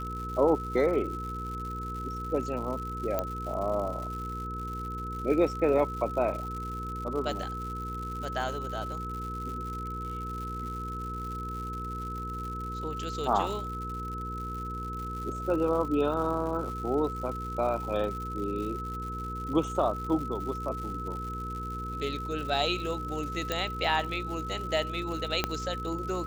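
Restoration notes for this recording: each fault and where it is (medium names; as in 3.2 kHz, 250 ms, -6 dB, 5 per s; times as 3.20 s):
crackle 170 per s -37 dBFS
hum 60 Hz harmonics 8 -38 dBFS
whine 1.3 kHz -36 dBFS
3.19 s: pop -15 dBFS
23.52 s: pop -14 dBFS
25.44 s: pop -11 dBFS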